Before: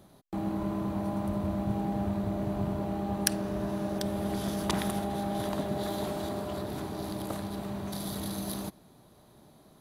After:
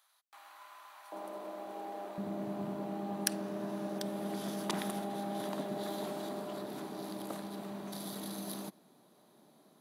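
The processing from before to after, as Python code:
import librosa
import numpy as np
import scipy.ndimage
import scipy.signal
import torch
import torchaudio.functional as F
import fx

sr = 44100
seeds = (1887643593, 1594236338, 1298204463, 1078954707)

y = fx.highpass(x, sr, hz=fx.steps((0.0, 1100.0), (1.12, 380.0), (2.18, 180.0)), slope=24)
y = y * librosa.db_to_amplitude(-5.0)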